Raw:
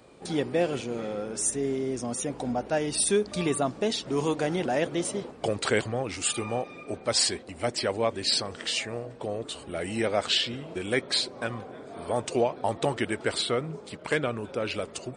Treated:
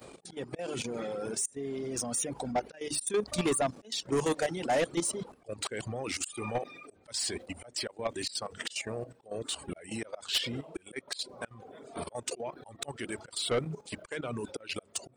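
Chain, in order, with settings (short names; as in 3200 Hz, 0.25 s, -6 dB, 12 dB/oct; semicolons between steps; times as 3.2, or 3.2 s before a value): notches 50/100/150/200/250/300/350 Hz; auto swell 0.32 s; reverb removal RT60 1.2 s; level quantiser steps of 14 dB; high shelf 8300 Hz +12 dB; soft clip -29 dBFS, distortion -10 dB; gain +6.5 dB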